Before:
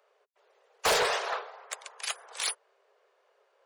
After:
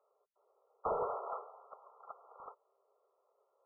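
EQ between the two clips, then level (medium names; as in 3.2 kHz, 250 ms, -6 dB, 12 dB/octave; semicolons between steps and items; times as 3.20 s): brick-wall FIR low-pass 1.4 kHz; -7.5 dB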